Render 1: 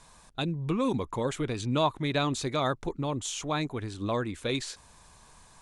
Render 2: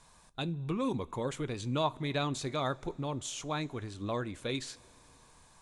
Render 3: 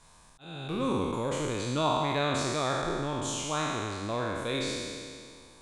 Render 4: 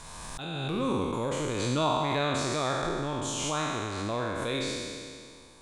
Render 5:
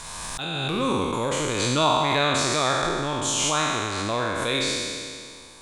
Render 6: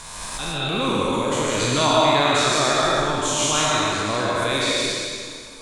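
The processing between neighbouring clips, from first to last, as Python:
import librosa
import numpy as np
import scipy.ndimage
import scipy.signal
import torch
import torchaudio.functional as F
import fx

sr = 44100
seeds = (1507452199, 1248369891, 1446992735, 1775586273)

y1 = fx.rev_double_slope(x, sr, seeds[0], early_s=0.24, late_s=4.0, knee_db=-21, drr_db=14.5)
y1 = y1 * librosa.db_to_amplitude(-5.0)
y2 = fx.spec_trails(y1, sr, decay_s=2.17)
y2 = fx.auto_swell(y2, sr, attack_ms=449.0)
y3 = fx.pre_swell(y2, sr, db_per_s=22.0)
y4 = fx.tilt_shelf(y3, sr, db=-3.5, hz=890.0)
y4 = y4 * librosa.db_to_amplitude(6.5)
y5 = fx.rev_freeverb(y4, sr, rt60_s=0.87, hf_ratio=0.85, predelay_ms=95, drr_db=-1.5)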